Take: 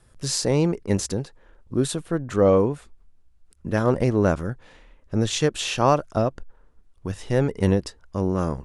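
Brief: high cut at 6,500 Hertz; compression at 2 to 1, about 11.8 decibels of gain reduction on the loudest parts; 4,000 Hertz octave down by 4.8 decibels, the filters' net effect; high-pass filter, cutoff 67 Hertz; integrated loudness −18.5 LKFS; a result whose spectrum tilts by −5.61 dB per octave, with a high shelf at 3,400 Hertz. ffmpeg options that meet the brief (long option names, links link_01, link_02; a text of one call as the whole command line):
ffmpeg -i in.wav -af "highpass=67,lowpass=6500,highshelf=frequency=3400:gain=4.5,equalizer=frequency=4000:width_type=o:gain=-9,acompressor=threshold=-36dB:ratio=2,volume=15.5dB" out.wav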